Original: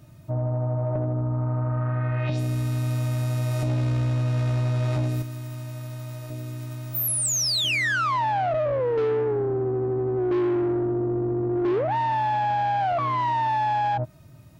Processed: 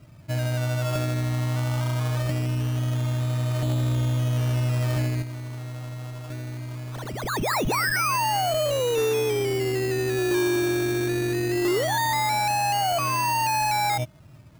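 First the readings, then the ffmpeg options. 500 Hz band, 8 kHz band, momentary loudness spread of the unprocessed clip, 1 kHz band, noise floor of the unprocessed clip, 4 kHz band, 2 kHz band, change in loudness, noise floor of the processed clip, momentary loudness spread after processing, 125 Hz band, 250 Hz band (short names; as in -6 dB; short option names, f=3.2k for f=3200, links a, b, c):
-0.5 dB, -2.0 dB, 12 LU, -0.5 dB, -46 dBFS, +0.5 dB, +2.0 dB, 0.0 dB, -46 dBFS, 12 LU, 0.0 dB, 0.0 dB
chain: -filter_complex "[0:a]acrossover=split=7000[a][b];[b]acompressor=threshold=-39dB:ratio=4:attack=1:release=60[c];[a][c]amix=inputs=2:normalize=0,acrusher=samples=17:mix=1:aa=0.000001:lfo=1:lforange=10.2:lforate=0.21"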